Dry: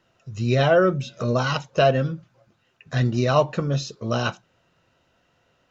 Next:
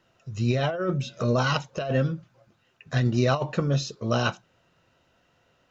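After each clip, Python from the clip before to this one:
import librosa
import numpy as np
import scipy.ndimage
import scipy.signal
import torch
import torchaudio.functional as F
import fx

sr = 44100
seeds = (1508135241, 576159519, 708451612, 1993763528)

y = fx.over_compress(x, sr, threshold_db=-20.0, ratio=-0.5)
y = y * librosa.db_to_amplitude(-2.0)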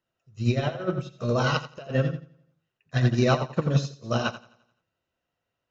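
y = fx.echo_feedback(x, sr, ms=86, feedback_pct=52, wet_db=-6)
y = fx.upward_expand(y, sr, threshold_db=-33.0, expansion=2.5)
y = y * librosa.db_to_amplitude(3.0)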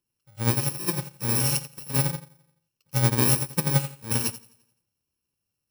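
y = fx.bit_reversed(x, sr, seeds[0], block=64)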